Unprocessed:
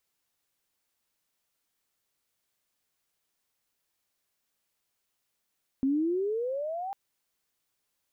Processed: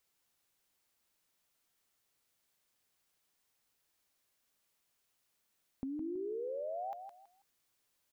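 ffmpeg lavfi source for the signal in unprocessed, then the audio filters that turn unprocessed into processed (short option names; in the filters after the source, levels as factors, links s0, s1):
-f lavfi -i "aevalsrc='pow(10,(-22.5-10*t/1.1)/20)*sin(2*PI*261*1.1/(19.5*log(2)/12)*(exp(19.5*log(2)/12*t/1.1)-1))':d=1.1:s=44100"
-af "alimiter=level_in=1.5:limit=0.0631:level=0:latency=1,volume=0.668,acompressor=threshold=0.0112:ratio=6,aecho=1:1:163|326|489:0.398|0.104|0.0269"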